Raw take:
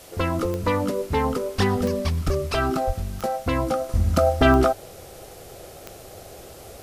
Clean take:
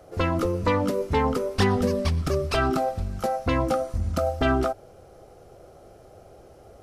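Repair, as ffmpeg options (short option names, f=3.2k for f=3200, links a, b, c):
-filter_complex "[0:a]adeclick=t=4,asplit=3[a][b][c];[a]afade=t=out:st=2.25:d=0.02[d];[b]highpass=f=140:w=0.5412,highpass=f=140:w=1.3066,afade=t=in:st=2.25:d=0.02,afade=t=out:st=2.37:d=0.02[e];[c]afade=t=in:st=2.37:d=0.02[f];[d][e][f]amix=inputs=3:normalize=0,asplit=3[g][h][i];[g]afade=t=out:st=2.86:d=0.02[j];[h]highpass=f=140:w=0.5412,highpass=f=140:w=1.3066,afade=t=in:st=2.86:d=0.02,afade=t=out:st=2.98:d=0.02[k];[i]afade=t=in:st=2.98:d=0.02[l];[j][k][l]amix=inputs=3:normalize=0,afwtdn=0.0045,asetnsamples=n=441:p=0,asendcmd='3.89 volume volume -6dB',volume=0dB"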